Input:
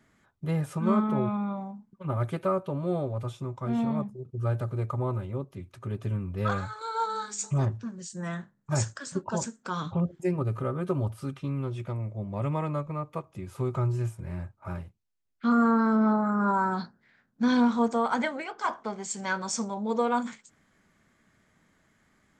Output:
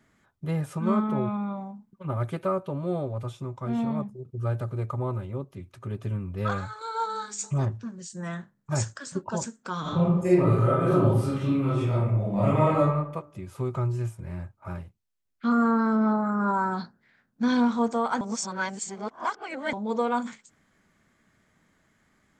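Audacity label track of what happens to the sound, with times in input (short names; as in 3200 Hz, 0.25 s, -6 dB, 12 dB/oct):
9.810000	12.840000	reverb throw, RT60 0.81 s, DRR -8.5 dB
18.210000	19.730000	reverse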